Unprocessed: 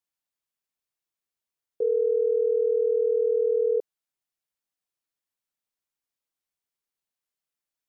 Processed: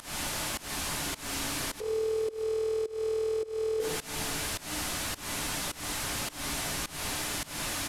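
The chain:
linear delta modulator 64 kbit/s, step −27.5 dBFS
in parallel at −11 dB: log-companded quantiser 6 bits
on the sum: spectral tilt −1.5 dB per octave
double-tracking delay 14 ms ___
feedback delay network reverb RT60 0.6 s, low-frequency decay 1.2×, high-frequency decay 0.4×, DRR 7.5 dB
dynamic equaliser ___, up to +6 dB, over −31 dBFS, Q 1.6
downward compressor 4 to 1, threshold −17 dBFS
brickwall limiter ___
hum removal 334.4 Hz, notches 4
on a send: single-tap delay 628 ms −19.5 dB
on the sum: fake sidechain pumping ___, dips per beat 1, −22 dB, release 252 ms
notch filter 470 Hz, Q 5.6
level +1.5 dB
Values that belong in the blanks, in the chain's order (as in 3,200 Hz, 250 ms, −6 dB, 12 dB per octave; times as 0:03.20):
−13.5 dB, 380 Hz, −21 dBFS, 105 BPM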